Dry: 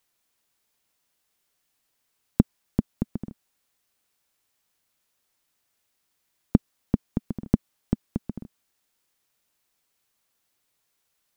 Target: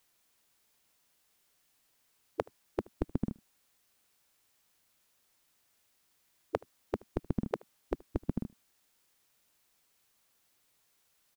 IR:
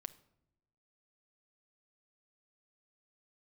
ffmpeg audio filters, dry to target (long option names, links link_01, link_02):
-af "afftfilt=real='re*lt(hypot(re,im),0.398)':imag='im*lt(hypot(re,im),0.398)':win_size=1024:overlap=0.75,aecho=1:1:76:0.0631,volume=2.5dB"